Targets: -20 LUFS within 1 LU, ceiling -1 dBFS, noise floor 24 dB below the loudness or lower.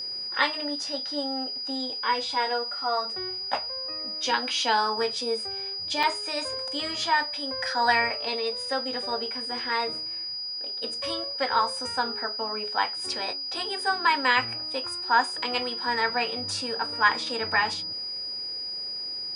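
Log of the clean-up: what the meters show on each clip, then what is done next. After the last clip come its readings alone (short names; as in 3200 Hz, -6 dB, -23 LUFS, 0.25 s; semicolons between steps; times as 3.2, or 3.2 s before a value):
dropouts 1; longest dropout 3.8 ms; steady tone 4900 Hz; tone level -31 dBFS; loudness -26.5 LUFS; peak -7.0 dBFS; loudness target -20.0 LUFS
-> interpolate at 6.03, 3.8 ms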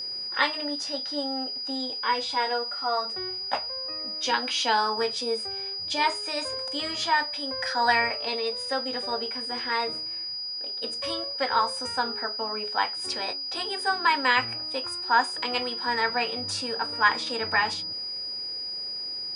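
dropouts 0; steady tone 4900 Hz; tone level -31 dBFS
-> notch 4900 Hz, Q 30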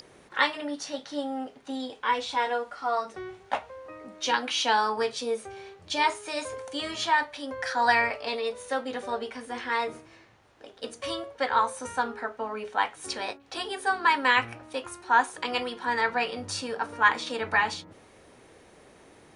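steady tone none; loudness -28.5 LUFS; peak -7.5 dBFS; loudness target -20.0 LUFS
-> gain +8.5 dB; limiter -1 dBFS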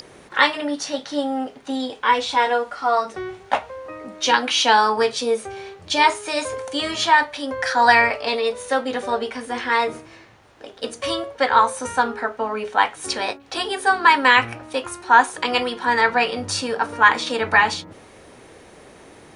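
loudness -20.0 LUFS; peak -1.0 dBFS; noise floor -47 dBFS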